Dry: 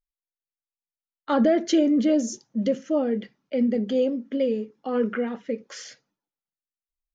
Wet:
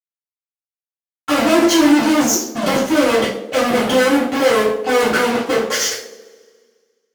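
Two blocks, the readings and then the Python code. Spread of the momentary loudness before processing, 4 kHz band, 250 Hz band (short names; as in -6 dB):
13 LU, +18.0 dB, +7.0 dB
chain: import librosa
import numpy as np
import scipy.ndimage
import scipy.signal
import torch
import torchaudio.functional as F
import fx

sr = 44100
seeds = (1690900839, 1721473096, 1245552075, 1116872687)

p1 = fx.chopper(x, sr, hz=8.8, depth_pct=65, duty_pct=65)
p2 = fx.dynamic_eq(p1, sr, hz=380.0, q=1.2, threshold_db=-35.0, ratio=4.0, max_db=7)
p3 = fx.rider(p2, sr, range_db=3, speed_s=0.5)
p4 = p2 + (p3 * librosa.db_to_amplitude(-3.0))
p5 = fx.fuzz(p4, sr, gain_db=36.0, gate_db=-41.0)
p6 = fx.highpass(p5, sr, hz=160.0, slope=6)
p7 = fx.echo_banded(p6, sr, ms=70, feedback_pct=78, hz=430.0, wet_db=-11.0)
p8 = fx.rev_double_slope(p7, sr, seeds[0], early_s=0.42, late_s=1.8, knee_db=-25, drr_db=-9.5)
y = p8 * librosa.db_to_amplitude(-8.5)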